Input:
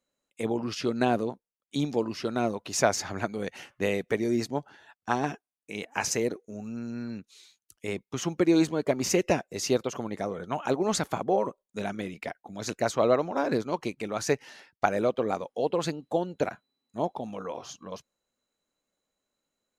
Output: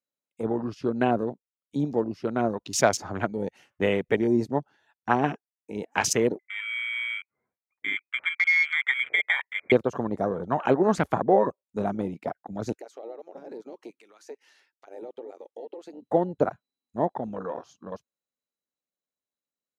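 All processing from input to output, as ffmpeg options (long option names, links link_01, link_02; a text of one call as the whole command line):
ffmpeg -i in.wav -filter_complex "[0:a]asettb=1/sr,asplit=3[link_01][link_02][link_03];[link_01]atrim=end=6.394[link_04];[link_02]atrim=start=6.39:end=9.72,asetpts=PTS-STARTPTS,afade=type=in:duration=0.004:curve=qsin,afade=type=out:start_time=3.326:duration=0.004:curve=qsin,acompressor=threshold=-27dB:ratio=2:attack=3.2:release=140:knee=1:detection=peak,lowpass=frequency=2100:width_type=q:width=0.5098,lowpass=frequency=2100:width_type=q:width=0.6013,lowpass=frequency=2100:width_type=q:width=0.9,lowpass=frequency=2100:width_type=q:width=2.563,afreqshift=-2500[link_05];[link_03]atrim=start=9.716[link_06];[link_04][link_05]acrossfade=duration=0.004:curve1=hsin:curve2=qsin[link_07];[link_07][link_06]acrossfade=duration=0.004:curve1=qsin:curve2=hsin,asettb=1/sr,asplit=3[link_08][link_09][link_10];[link_08]atrim=end=12.724[link_11];[link_09]atrim=start=12.72:end=16.02,asetpts=PTS-STARTPTS,afade=type=in:duration=0.004:curve=qsin,afade=type=out:start_time=3.296:duration=0.004:curve=qsin,highpass=frequency=340:width=0.5412,highpass=frequency=340:width=1.3066,equalizer=frequency=640:width=1.4:gain=-7.5,acompressor=threshold=-41dB:ratio=5:attack=3.2:release=140:knee=1:detection=peak[link_12];[link_10]atrim=start=16.016[link_13];[link_11][link_12]acrossfade=duration=0.004:curve1=hsin:curve2=qsin[link_14];[link_14][link_13]acrossfade=duration=0.004:curve1=qsin:curve2=hsin,highpass=frequency=68:width=0.5412,highpass=frequency=68:width=1.3066,afwtdn=0.0141,dynaudnorm=framelen=530:gausssize=13:maxgain=4dB,volume=1.5dB" out.wav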